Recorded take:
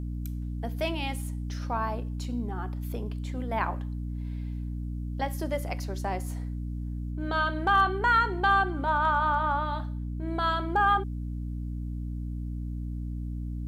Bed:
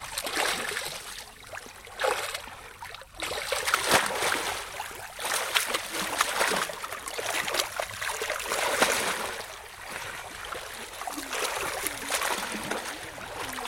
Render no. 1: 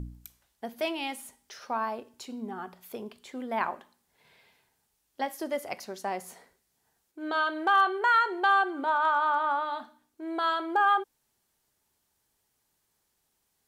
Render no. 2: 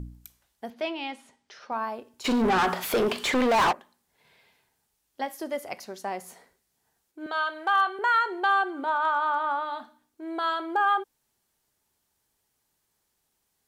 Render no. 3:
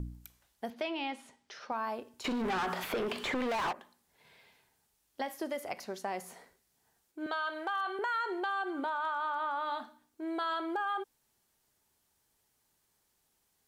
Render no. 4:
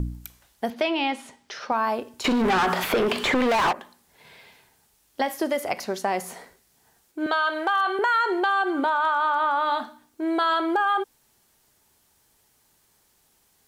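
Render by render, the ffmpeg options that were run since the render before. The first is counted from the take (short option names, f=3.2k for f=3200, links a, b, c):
-af "bandreject=f=60:t=h:w=4,bandreject=f=120:t=h:w=4,bandreject=f=180:t=h:w=4,bandreject=f=240:t=h:w=4,bandreject=f=300:t=h:w=4"
-filter_complex "[0:a]asettb=1/sr,asplit=3[a][b][c];[a]atrim=end=0.704[d];[b]atrim=start=0.7:end=1.72,asetpts=PTS-STARTPTS,afade=t=in:d=0.004:c=qsin,afade=t=out:st=1.016:d=0.004:c=qsin,highpass=100,lowpass=4.6k[e];[c]atrim=start=1.716[f];[d][e]acrossfade=d=0.004:c1=hsin:c2=qsin[g];[g][f]acrossfade=d=0.004:c1=qsin:c2=hsin,asplit=3[h][i][j];[h]afade=t=out:st=2.24:d=0.02[k];[i]asplit=2[l][m];[m]highpass=f=720:p=1,volume=37dB,asoftclip=type=tanh:threshold=-14.5dB[n];[l][n]amix=inputs=2:normalize=0,lowpass=f=3.3k:p=1,volume=-6dB,afade=t=in:st=2.24:d=0.02,afade=t=out:st=3.71:d=0.02[o];[j]afade=t=in:st=3.71:d=0.02[p];[k][o][p]amix=inputs=3:normalize=0,asettb=1/sr,asplit=3[q][r][s];[q]atrim=end=7.264[t];[r]atrim=start=7.26:end=7.99,asetpts=PTS-STARTPTS,afade=t=in:d=0.004:c=qsin,afade=t=out:st=0.726:d=0.004:c=qsin,highpass=540[u];[s]atrim=start=7.986[v];[t][u]acrossfade=d=0.004:c1=hsin:c2=qsin[w];[w][v]acrossfade=d=0.004:c1=qsin:c2=hsin"
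-filter_complex "[0:a]alimiter=limit=-23dB:level=0:latency=1:release=60,acrossover=split=1600|3300[a][b][c];[a]acompressor=threshold=-33dB:ratio=4[d];[b]acompressor=threshold=-41dB:ratio=4[e];[c]acompressor=threshold=-49dB:ratio=4[f];[d][e][f]amix=inputs=3:normalize=0"
-af "volume=11.5dB"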